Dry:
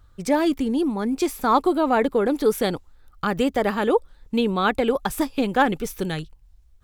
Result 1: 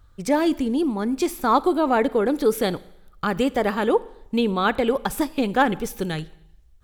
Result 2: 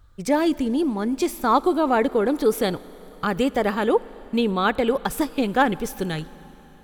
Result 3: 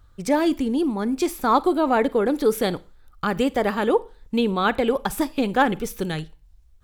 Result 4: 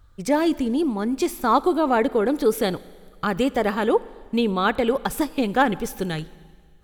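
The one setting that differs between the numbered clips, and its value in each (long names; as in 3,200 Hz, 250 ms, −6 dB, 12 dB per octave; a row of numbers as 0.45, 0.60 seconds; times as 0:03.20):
four-comb reverb, RT60: 0.8, 4.4, 0.34, 1.8 seconds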